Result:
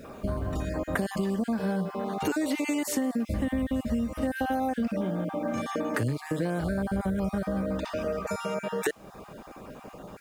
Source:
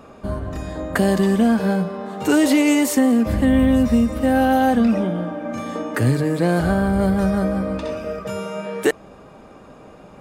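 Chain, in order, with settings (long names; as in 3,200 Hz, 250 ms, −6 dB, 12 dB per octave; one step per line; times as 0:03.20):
time-frequency cells dropped at random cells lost 21%
downward compressor 6 to 1, threshold −26 dBFS, peak gain reduction 13 dB
bit reduction 10 bits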